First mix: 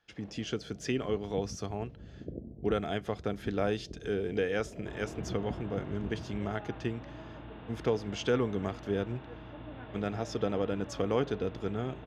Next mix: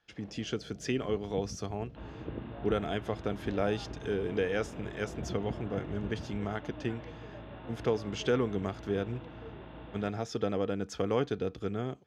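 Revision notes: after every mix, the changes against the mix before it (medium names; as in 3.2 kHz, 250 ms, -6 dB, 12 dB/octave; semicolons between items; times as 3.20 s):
second sound: entry -2.90 s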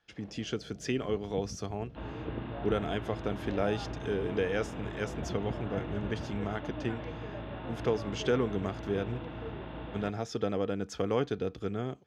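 second sound +5.5 dB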